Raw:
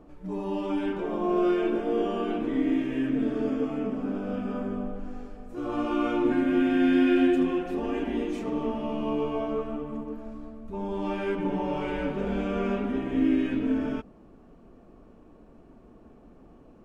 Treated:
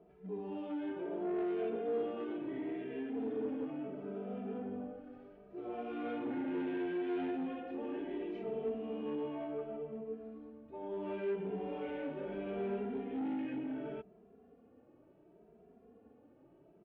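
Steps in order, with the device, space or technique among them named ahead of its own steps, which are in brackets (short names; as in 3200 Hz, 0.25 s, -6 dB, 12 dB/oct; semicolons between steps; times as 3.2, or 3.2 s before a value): barber-pole flanger into a guitar amplifier (endless flanger 2.6 ms +0.71 Hz; soft clip -26.5 dBFS, distortion -12 dB; speaker cabinet 99–3400 Hz, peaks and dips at 430 Hz +8 dB, 700 Hz +4 dB, 1100 Hz -6 dB); gain -8 dB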